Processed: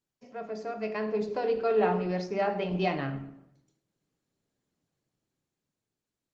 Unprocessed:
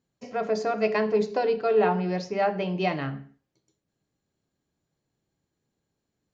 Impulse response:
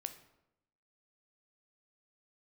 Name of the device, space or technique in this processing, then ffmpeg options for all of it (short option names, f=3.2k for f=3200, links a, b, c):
far-field microphone of a smart speaker: -filter_complex "[0:a]asplit=3[a][b][c];[a]afade=t=out:st=1.92:d=0.02[d];[b]equalizer=f=73:t=o:w=0.73:g=-6,afade=t=in:st=1.92:d=0.02,afade=t=out:st=3.17:d=0.02[e];[c]afade=t=in:st=3.17:d=0.02[f];[d][e][f]amix=inputs=3:normalize=0[g];[1:a]atrim=start_sample=2205[h];[g][h]afir=irnorm=-1:irlink=0,highpass=f=88:w=0.5412,highpass=f=88:w=1.3066,dynaudnorm=f=240:g=11:m=9dB,volume=-8dB" -ar 48000 -c:a libopus -b:a 20k